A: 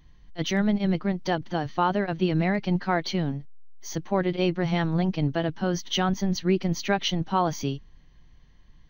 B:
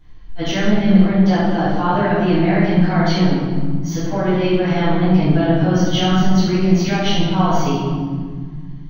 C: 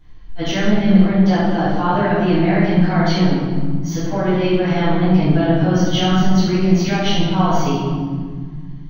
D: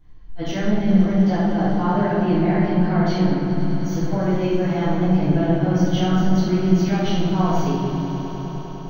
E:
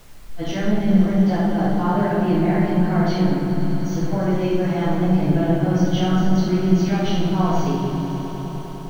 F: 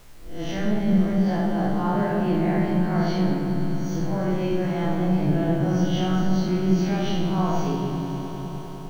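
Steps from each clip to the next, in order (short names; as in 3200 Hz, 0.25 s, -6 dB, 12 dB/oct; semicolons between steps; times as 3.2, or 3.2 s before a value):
limiter -17 dBFS, peak gain reduction 8 dB; tone controls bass -3 dB, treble -4 dB; reverb RT60 1.8 s, pre-delay 8 ms, DRR -11.5 dB; gain -5.5 dB
nothing audible
bell 3200 Hz -6 dB 2.2 oct; on a send: swelling echo 0.101 s, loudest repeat 5, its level -17 dB; on the sum: gain -4 dB
added noise pink -50 dBFS
spectral swells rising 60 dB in 0.49 s; gain -5 dB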